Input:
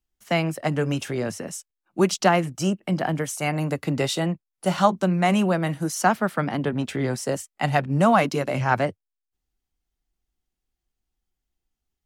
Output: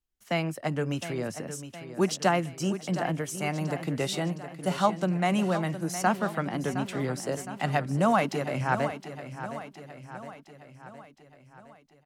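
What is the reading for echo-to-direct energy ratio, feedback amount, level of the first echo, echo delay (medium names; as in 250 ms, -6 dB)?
-10.0 dB, 56%, -11.5 dB, 714 ms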